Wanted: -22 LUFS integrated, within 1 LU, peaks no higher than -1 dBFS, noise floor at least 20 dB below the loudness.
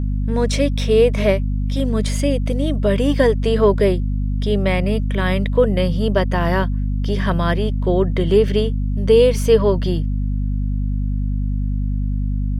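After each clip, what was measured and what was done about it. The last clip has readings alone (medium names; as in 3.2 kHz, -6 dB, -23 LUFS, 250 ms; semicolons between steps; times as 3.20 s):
hum 50 Hz; highest harmonic 250 Hz; hum level -17 dBFS; loudness -18.5 LUFS; peak level -2.5 dBFS; loudness target -22.0 LUFS
-> hum notches 50/100/150/200/250 Hz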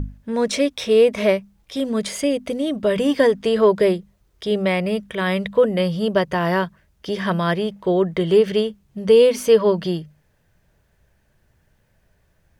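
hum not found; loudness -19.5 LUFS; peak level -4.0 dBFS; loudness target -22.0 LUFS
-> trim -2.5 dB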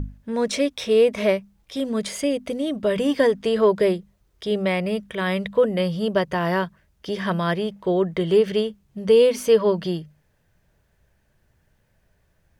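loudness -22.0 LUFS; peak level -6.5 dBFS; noise floor -66 dBFS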